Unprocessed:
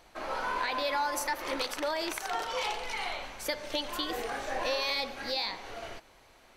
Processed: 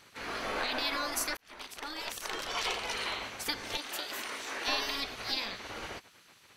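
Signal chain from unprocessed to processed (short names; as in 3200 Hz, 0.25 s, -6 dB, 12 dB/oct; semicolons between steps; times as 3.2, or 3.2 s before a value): 3.77–4.68 HPF 720 Hz 6 dB/oct; spectral gate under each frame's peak -10 dB weak; 1.37–2.93 fade in equal-power; gain +4 dB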